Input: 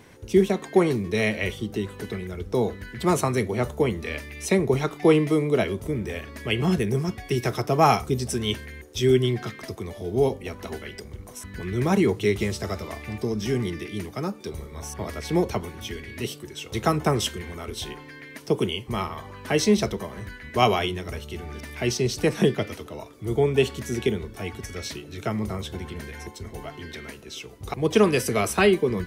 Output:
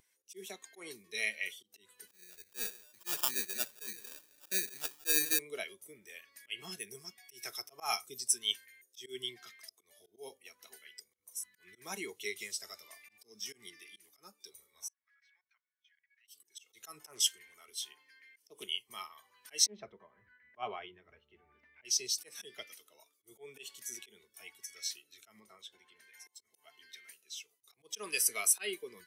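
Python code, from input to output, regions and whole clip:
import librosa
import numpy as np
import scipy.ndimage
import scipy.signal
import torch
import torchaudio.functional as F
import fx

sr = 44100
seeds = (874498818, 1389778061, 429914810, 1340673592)

y = fx.chain(x, sr, fx.echo_single(ms=168, db=-16.5),
    fx.dynamic_eq(hz=240.0, q=2.0, threshold_db=-36.0, ratio=4.0, max_db=6),
    fx.sample_hold(seeds[0], rate_hz=2100.0, jitter_pct=0), at=(2.07, 5.39))
y = fx.chain(y, sr, fx.ladder_bandpass(hz=1800.0, resonance_pct=55),
    fx.level_steps(step_db=17), at=(14.88, 16.28))
y = fx.chain(y, sr, fx.notch(hz=3800.0, q=18.0),
    fx.doppler_dist(depth_ms=0.26), at=(17.03, 18.64))
y = fx.chain(y, sr, fx.lowpass(hz=1700.0, slope=12),
    fx.low_shelf(hz=150.0, db=9.0),
    fx.doppler_dist(depth_ms=0.17), at=(19.66, 21.85))
y = fx.chain(y, sr, fx.lowpass(hz=3600.0, slope=6),
    fx.low_shelf(hz=180.0, db=-6.0), at=(25.4, 26.14))
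y = fx.auto_swell(y, sr, attack_ms=125.0)
y = np.diff(y, prepend=0.0)
y = fx.spectral_expand(y, sr, expansion=1.5)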